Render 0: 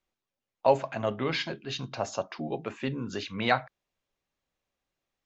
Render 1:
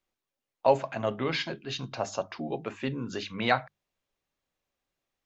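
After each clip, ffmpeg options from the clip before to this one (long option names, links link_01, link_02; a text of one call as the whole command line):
ffmpeg -i in.wav -af "bandreject=frequency=50:width_type=h:width=6,bandreject=frequency=100:width_type=h:width=6,bandreject=frequency=150:width_type=h:width=6,bandreject=frequency=200:width_type=h:width=6" out.wav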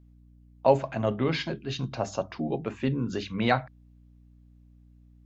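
ffmpeg -i in.wav -af "lowshelf=frequency=400:gain=9.5,aeval=exprs='val(0)+0.00251*(sin(2*PI*60*n/s)+sin(2*PI*2*60*n/s)/2+sin(2*PI*3*60*n/s)/3+sin(2*PI*4*60*n/s)/4+sin(2*PI*5*60*n/s)/5)':channel_layout=same,volume=-1.5dB" out.wav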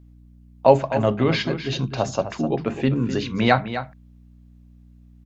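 ffmpeg -i in.wav -af "aecho=1:1:255:0.282,volume=6.5dB" out.wav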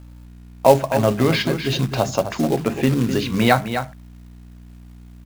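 ffmpeg -i in.wav -filter_complex "[0:a]asplit=2[link_01][link_02];[link_02]acompressor=threshold=-28dB:ratio=12,volume=2.5dB[link_03];[link_01][link_03]amix=inputs=2:normalize=0,acrusher=bits=4:mode=log:mix=0:aa=0.000001" out.wav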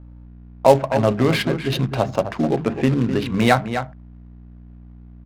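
ffmpeg -i in.wav -af "adynamicsmooth=sensitivity=2.5:basefreq=1200" out.wav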